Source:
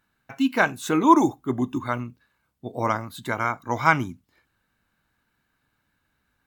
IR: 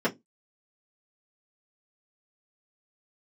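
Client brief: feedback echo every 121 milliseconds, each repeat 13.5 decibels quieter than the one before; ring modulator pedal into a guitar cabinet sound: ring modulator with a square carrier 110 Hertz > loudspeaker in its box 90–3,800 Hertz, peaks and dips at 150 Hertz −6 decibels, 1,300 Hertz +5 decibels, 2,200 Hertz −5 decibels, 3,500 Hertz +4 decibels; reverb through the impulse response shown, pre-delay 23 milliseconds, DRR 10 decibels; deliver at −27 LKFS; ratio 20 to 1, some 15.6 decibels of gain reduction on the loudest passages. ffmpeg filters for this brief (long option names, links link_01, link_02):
-filter_complex "[0:a]acompressor=threshold=-24dB:ratio=20,aecho=1:1:121|242:0.211|0.0444,asplit=2[link_01][link_02];[1:a]atrim=start_sample=2205,adelay=23[link_03];[link_02][link_03]afir=irnorm=-1:irlink=0,volume=-22dB[link_04];[link_01][link_04]amix=inputs=2:normalize=0,aeval=exprs='val(0)*sgn(sin(2*PI*110*n/s))':channel_layout=same,highpass=90,equalizer=frequency=150:width_type=q:width=4:gain=-6,equalizer=frequency=1300:width_type=q:width=4:gain=5,equalizer=frequency=2200:width_type=q:width=4:gain=-5,equalizer=frequency=3500:width_type=q:width=4:gain=4,lowpass=frequency=3800:width=0.5412,lowpass=frequency=3800:width=1.3066,volume=3dB"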